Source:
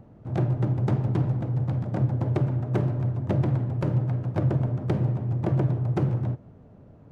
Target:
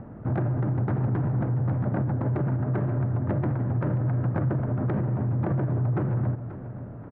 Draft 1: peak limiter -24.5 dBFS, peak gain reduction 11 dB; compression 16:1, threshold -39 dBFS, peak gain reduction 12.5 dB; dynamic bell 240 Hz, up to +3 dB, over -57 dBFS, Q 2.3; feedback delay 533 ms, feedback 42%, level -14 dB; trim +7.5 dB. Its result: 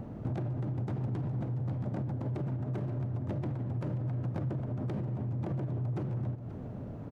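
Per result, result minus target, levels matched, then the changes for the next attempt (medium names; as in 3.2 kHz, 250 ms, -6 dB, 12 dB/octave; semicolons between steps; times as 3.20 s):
compression: peak gain reduction +8.5 dB; 2 kHz band -4.0 dB
change: compression 16:1, threshold -30 dBFS, peak gain reduction 4 dB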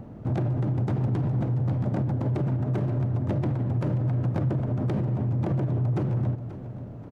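2 kHz band -4.0 dB
add after dynamic bell: resonant low-pass 1.6 kHz, resonance Q 1.9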